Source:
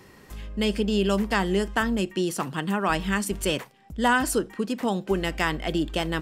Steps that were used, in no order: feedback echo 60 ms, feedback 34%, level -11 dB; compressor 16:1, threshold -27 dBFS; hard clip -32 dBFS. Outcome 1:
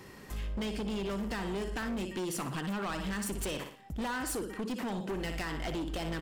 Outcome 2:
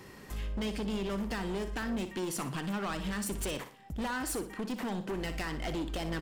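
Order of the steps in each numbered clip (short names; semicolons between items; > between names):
feedback echo > compressor > hard clip; compressor > hard clip > feedback echo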